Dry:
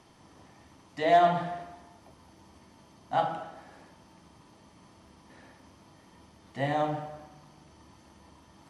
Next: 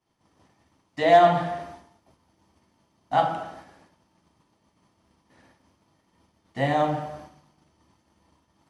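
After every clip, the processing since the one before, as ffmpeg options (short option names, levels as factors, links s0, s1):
-af "agate=range=0.0224:threshold=0.00562:ratio=3:detection=peak,volume=1.88"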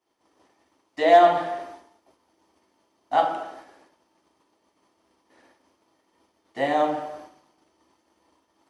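-af "lowshelf=f=230:t=q:w=1.5:g=-12.5"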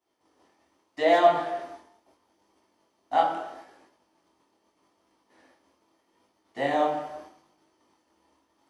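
-af "flanger=delay=19:depth=6.6:speed=0.78,volume=1.12"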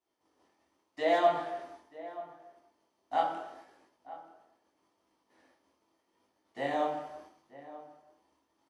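-filter_complex "[0:a]asplit=2[s0][s1];[s1]adelay=932.9,volume=0.158,highshelf=f=4000:g=-21[s2];[s0][s2]amix=inputs=2:normalize=0,volume=0.473"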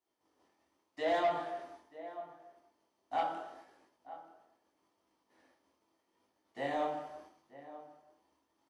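-af "asoftclip=type=tanh:threshold=0.0841,volume=0.75"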